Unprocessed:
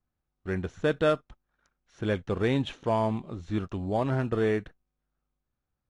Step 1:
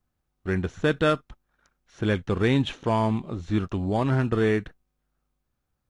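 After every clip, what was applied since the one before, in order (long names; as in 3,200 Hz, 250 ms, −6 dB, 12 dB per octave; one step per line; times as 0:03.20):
dynamic equaliser 600 Hz, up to −6 dB, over −39 dBFS, Q 1.5
level +5.5 dB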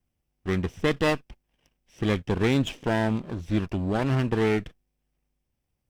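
lower of the sound and its delayed copy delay 0.37 ms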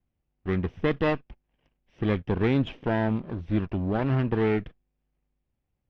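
high-frequency loss of the air 320 metres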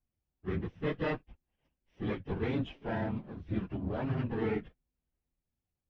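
random phases in long frames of 50 ms
level −8.5 dB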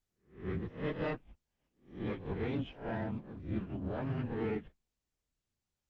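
peak hold with a rise ahead of every peak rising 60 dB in 0.40 s
level −4 dB
Opus 20 kbit/s 48,000 Hz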